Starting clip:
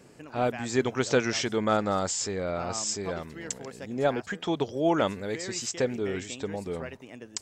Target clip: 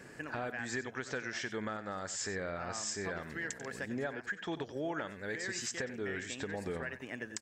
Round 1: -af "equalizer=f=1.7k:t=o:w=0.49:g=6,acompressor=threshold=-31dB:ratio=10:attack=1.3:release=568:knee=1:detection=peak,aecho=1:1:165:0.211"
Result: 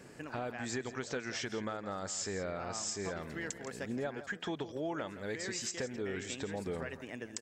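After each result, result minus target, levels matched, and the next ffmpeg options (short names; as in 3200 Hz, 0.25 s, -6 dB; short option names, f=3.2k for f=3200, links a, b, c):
echo 73 ms late; 2000 Hz band -3.5 dB
-af "equalizer=f=1.7k:t=o:w=0.49:g=6,acompressor=threshold=-31dB:ratio=10:attack=1.3:release=568:knee=1:detection=peak,aecho=1:1:92:0.211"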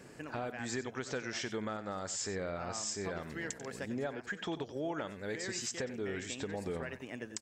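2000 Hz band -3.5 dB
-af "equalizer=f=1.7k:t=o:w=0.49:g=14,acompressor=threshold=-31dB:ratio=10:attack=1.3:release=568:knee=1:detection=peak,aecho=1:1:92:0.211"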